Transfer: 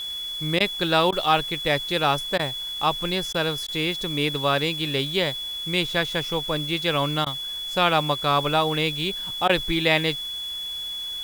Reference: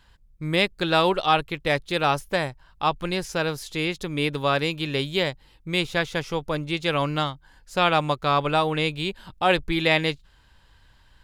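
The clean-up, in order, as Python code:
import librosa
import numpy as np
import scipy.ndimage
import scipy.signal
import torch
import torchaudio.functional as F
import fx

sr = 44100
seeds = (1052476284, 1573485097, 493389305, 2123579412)

y = fx.notch(x, sr, hz=3400.0, q=30.0)
y = fx.fix_interpolate(y, sr, at_s=(0.59, 1.11, 2.38, 3.33, 3.67, 7.25, 9.48), length_ms=12.0)
y = fx.noise_reduce(y, sr, print_start_s=10.15, print_end_s=10.65, reduce_db=23.0)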